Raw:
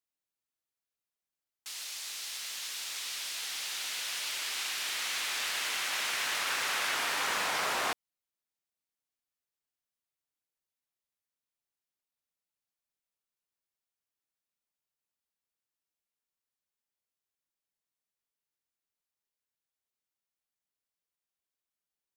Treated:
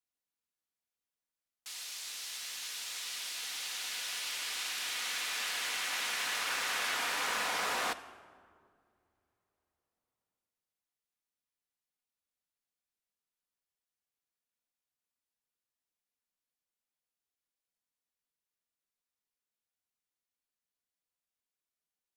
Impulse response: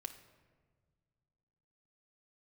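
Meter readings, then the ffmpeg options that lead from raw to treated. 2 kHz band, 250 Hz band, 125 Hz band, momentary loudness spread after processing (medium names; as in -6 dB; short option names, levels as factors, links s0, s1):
-2.0 dB, -2.0 dB, -3.5 dB, 8 LU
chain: -filter_complex "[0:a]asplit=2[s0][s1];[1:a]atrim=start_sample=2205,asetrate=27342,aresample=44100[s2];[s1][s2]afir=irnorm=-1:irlink=0,volume=1.41[s3];[s0][s3]amix=inputs=2:normalize=0,volume=0.355"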